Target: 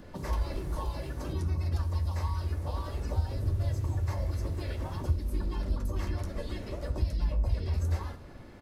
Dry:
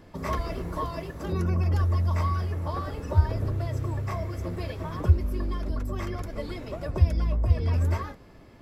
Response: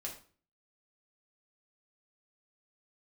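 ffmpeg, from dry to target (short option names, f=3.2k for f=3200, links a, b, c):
-filter_complex "[0:a]asplit=3[a][b][c];[b]asetrate=35002,aresample=44100,atempo=1.25992,volume=-6dB[d];[c]asetrate=37084,aresample=44100,atempo=1.18921,volume=-1dB[e];[a][d][e]amix=inputs=3:normalize=0,acrossover=split=94|3500[f][g][h];[f]acompressor=threshold=-27dB:ratio=4[i];[g]acompressor=threshold=-38dB:ratio=4[j];[h]acompressor=threshold=-49dB:ratio=4[k];[i][j][k]amix=inputs=3:normalize=0,asplit=2[l][m];[1:a]atrim=start_sample=2205[n];[m][n]afir=irnorm=-1:irlink=0,volume=0.5dB[o];[l][o]amix=inputs=2:normalize=0,volume=-5.5dB"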